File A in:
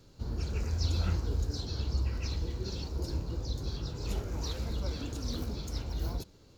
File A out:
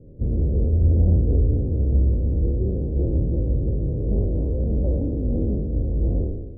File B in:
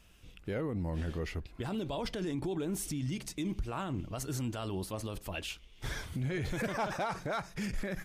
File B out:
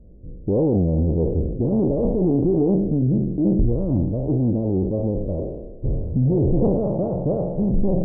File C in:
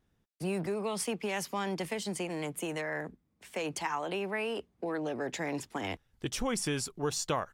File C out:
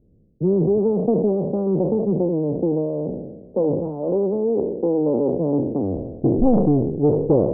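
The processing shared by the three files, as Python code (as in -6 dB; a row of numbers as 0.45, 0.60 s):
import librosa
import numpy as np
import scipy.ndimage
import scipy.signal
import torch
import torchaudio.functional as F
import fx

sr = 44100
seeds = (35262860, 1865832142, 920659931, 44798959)

y = fx.spec_trails(x, sr, decay_s=1.22)
y = scipy.signal.sosfilt(scipy.signal.ellip(4, 1.0, 70, 550.0, 'lowpass', fs=sr, output='sos'), y)
y = fx.doppler_dist(y, sr, depth_ms=0.38)
y = y * 10.0 ** (-20 / 20.0) / np.sqrt(np.mean(np.square(y)))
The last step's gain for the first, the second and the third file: +11.5, +15.0, +15.5 dB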